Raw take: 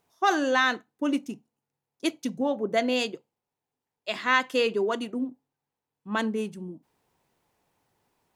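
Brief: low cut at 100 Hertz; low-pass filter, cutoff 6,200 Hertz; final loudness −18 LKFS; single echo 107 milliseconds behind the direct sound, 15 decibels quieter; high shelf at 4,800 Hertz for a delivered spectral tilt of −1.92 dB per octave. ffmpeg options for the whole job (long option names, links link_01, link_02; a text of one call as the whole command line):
ffmpeg -i in.wav -af "highpass=100,lowpass=6200,highshelf=frequency=4800:gain=-4.5,aecho=1:1:107:0.178,volume=9.5dB" out.wav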